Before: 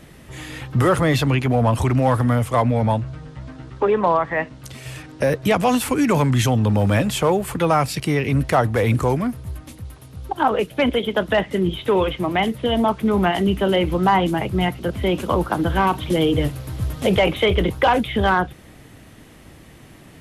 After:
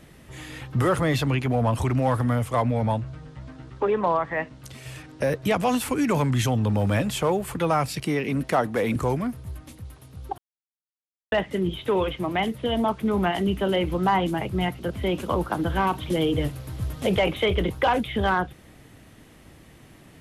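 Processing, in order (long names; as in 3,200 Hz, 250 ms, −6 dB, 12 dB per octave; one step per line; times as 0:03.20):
0:08.05–0:08.96: low shelf with overshoot 140 Hz −9.5 dB, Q 1.5
0:10.38–0:11.32: silence
level −5 dB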